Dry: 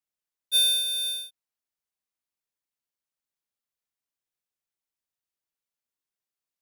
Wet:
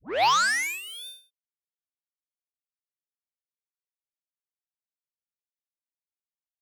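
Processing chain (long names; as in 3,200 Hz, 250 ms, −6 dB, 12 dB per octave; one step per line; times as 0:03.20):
turntable start at the beginning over 1.06 s
harmonic generator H 5 −29 dB, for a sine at −16.5 dBFS
expander for the loud parts 2.5 to 1, over −35 dBFS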